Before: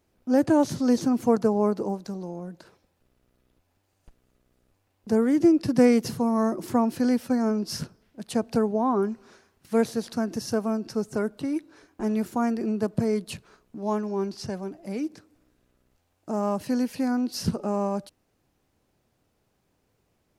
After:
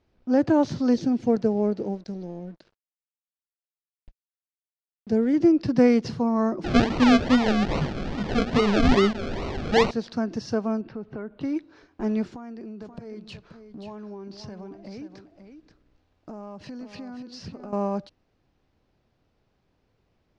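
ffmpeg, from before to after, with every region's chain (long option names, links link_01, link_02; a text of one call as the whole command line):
ffmpeg -i in.wav -filter_complex "[0:a]asettb=1/sr,asplit=3[link_01][link_02][link_03];[link_01]atrim=end=0.944[link_04];[link_02]atrim=start=0.94:end=5.34,asetpts=PTS-STARTPTS,afade=type=in:duration=0.004:curve=qsin,afade=type=out:start_time=4.396:duration=0.004:curve=qsin,equalizer=frequency=1100:width_type=o:width=0.65:gain=-14,aeval=exprs='sgn(val(0))*max(abs(val(0))-0.00168,0)':channel_layout=same[link_05];[link_03]atrim=start=5.336[link_06];[link_04][link_05]acrossfade=duration=0.004:curve1=hsin:curve2=qsin[link_07];[link_07][link_06]acrossfade=duration=0.004:curve1=qsin:curve2=hsin,asettb=1/sr,asplit=3[link_08][link_09][link_10];[link_08]atrim=end=6.644[link_11];[link_09]atrim=start=6.64:end=9.91,asetpts=PTS-STARTPTS,afade=type=in:duration=0.004:curve=qsin,afade=type=out:start_time=3.266:duration=0.004:curve=qsin,aeval=exprs='val(0)+0.5*0.0422*sgn(val(0))':channel_layout=same,asplit=2[link_12][link_13];[link_13]adelay=20,volume=-3.5dB[link_14];[link_12][link_14]amix=inputs=2:normalize=0,atrim=end_sample=144207,acrusher=samples=37:mix=1:aa=0.000001:lfo=1:lforange=22.2:lforate=2.4[link_15];[link_10]atrim=start=9.906[link_16];[link_11][link_15]acrossfade=duration=0.004:curve1=hsin:curve2=qsin[link_17];[link_17][link_16]acrossfade=duration=0.004:curve1=qsin:curve2=hsin,asettb=1/sr,asplit=3[link_18][link_19][link_20];[link_18]atrim=end=10.814[link_21];[link_19]atrim=start=10.81:end=11.41,asetpts=PTS-STARTPTS,afade=type=in:duration=0.004:curve=qsin,afade=type=out:start_time=0.596:duration=0.004:curve=qsin,lowpass=frequency=3100:width=0.5412,lowpass=frequency=3100:width=1.3066,acompressor=threshold=-33dB:ratio=3:attack=3.2:release=140:knee=1:detection=peak[link_22];[link_20]atrim=start=11.406[link_23];[link_21][link_22]acrossfade=duration=0.004:curve1=hsin:curve2=qsin[link_24];[link_24][link_23]acrossfade=duration=0.004:curve1=qsin:curve2=hsin,asettb=1/sr,asplit=3[link_25][link_26][link_27];[link_25]atrim=end=12.294[link_28];[link_26]atrim=start=12.29:end=17.73,asetpts=PTS-STARTPTS,afade=type=in:duration=0.004:curve=qsin,afade=type=out:start_time=5.436:duration=0.004:curve=qsin,acompressor=threshold=-36dB:ratio=8:attack=3.2:release=140:knee=1:detection=peak,aecho=1:1:530:0.355,atrim=end_sample=239904[link_29];[link_27]atrim=start=17.726[link_30];[link_28][link_29]acrossfade=duration=0.004:curve1=hsin:curve2=qsin[link_31];[link_31][link_30]acrossfade=duration=0.004:curve1=qsin:curve2=hsin,lowpass=frequency=5200:width=0.5412,lowpass=frequency=5200:width=1.3066,lowshelf=frequency=65:gain=7" out.wav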